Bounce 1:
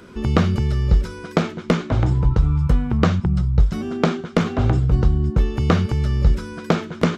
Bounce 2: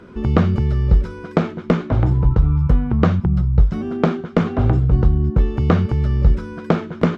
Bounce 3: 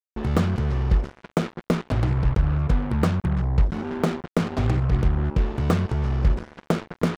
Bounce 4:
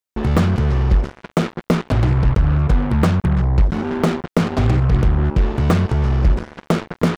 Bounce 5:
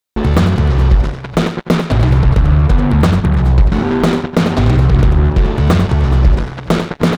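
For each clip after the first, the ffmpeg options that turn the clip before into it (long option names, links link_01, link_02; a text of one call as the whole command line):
ffmpeg -i in.wav -af "lowpass=frequency=1500:poles=1,volume=2dB" out.wav
ffmpeg -i in.wav -af "acrusher=bits=3:mix=0:aa=0.5,volume=-6dB" out.wav
ffmpeg -i in.wav -af "asoftclip=type=tanh:threshold=-14dB,volume=7.5dB" out.wav
ffmpeg -i in.wav -filter_complex "[0:a]equalizer=frequency=3800:width=4:gain=4.5,asplit=2[link_01][link_02];[link_02]alimiter=limit=-14.5dB:level=0:latency=1,volume=1dB[link_03];[link_01][link_03]amix=inputs=2:normalize=0,aecho=1:1:94|416|423:0.355|0.119|0.158" out.wav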